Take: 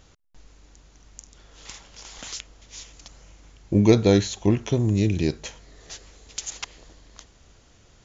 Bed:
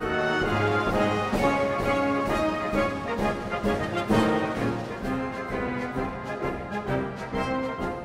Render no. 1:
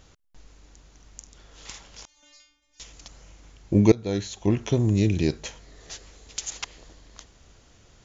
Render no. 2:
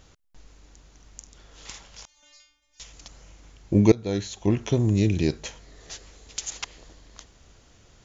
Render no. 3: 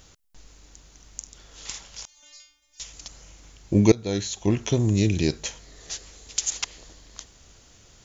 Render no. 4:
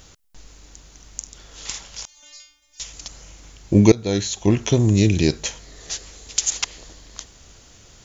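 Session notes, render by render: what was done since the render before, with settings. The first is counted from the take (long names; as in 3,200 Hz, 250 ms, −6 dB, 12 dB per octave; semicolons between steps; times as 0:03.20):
0:02.05–0:02.80: stiff-string resonator 290 Hz, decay 0.7 s, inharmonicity 0.002; 0:03.92–0:04.69: fade in, from −22.5 dB
0:01.85–0:02.94: parametric band 320 Hz −7.5 dB 0.76 octaves
high-shelf EQ 4,000 Hz +9.5 dB
level +5 dB; brickwall limiter −1 dBFS, peak gain reduction 2 dB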